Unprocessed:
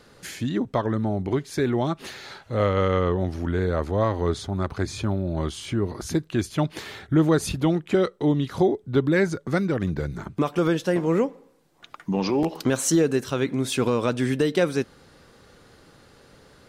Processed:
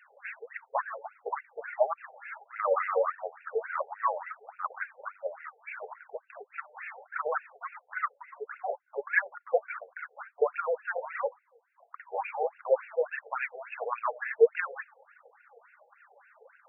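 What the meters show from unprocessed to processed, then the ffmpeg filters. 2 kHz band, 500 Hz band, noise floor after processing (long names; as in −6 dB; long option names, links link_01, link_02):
−1.0 dB, −6.5 dB, −70 dBFS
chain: -af "afftfilt=real='re*between(b*sr/4096,140,5100)':imag='im*between(b*sr/4096,140,5100)':win_size=4096:overlap=0.75,aphaser=in_gain=1:out_gain=1:delay=4.7:decay=0.66:speed=1.5:type=triangular,afftfilt=real='re*between(b*sr/1024,590*pow(2000/590,0.5+0.5*sin(2*PI*3.5*pts/sr))/1.41,590*pow(2000/590,0.5+0.5*sin(2*PI*3.5*pts/sr))*1.41)':imag='im*between(b*sr/1024,590*pow(2000/590,0.5+0.5*sin(2*PI*3.5*pts/sr))/1.41,590*pow(2000/590,0.5+0.5*sin(2*PI*3.5*pts/sr))*1.41)':win_size=1024:overlap=0.75"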